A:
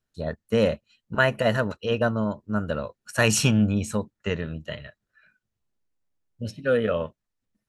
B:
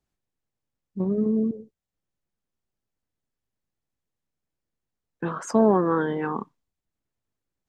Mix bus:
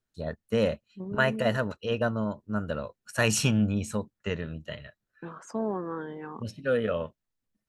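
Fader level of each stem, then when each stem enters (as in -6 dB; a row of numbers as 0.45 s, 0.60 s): -4.0 dB, -12.0 dB; 0.00 s, 0.00 s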